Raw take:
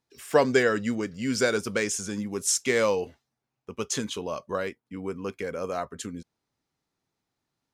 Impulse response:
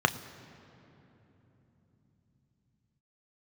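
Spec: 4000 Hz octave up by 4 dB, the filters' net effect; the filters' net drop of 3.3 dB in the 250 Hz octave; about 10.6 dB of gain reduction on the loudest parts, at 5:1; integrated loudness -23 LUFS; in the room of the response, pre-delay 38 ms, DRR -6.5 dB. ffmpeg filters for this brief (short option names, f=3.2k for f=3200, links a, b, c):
-filter_complex "[0:a]equalizer=f=250:t=o:g=-4,equalizer=f=4k:t=o:g=5.5,acompressor=threshold=-27dB:ratio=5,asplit=2[a][b];[1:a]atrim=start_sample=2205,adelay=38[c];[b][c]afir=irnorm=-1:irlink=0,volume=-6.5dB[d];[a][d]amix=inputs=2:normalize=0,volume=3.5dB"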